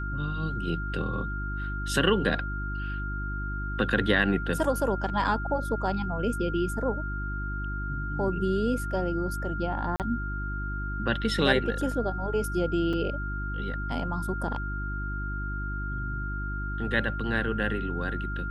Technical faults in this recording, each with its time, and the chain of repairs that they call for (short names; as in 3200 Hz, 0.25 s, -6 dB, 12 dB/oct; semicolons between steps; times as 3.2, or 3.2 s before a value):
hum 50 Hz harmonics 7 -33 dBFS
tone 1400 Hz -35 dBFS
9.96–10 gap 38 ms
12.93 gap 3.7 ms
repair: notch 1400 Hz, Q 30; de-hum 50 Hz, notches 7; interpolate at 9.96, 38 ms; interpolate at 12.93, 3.7 ms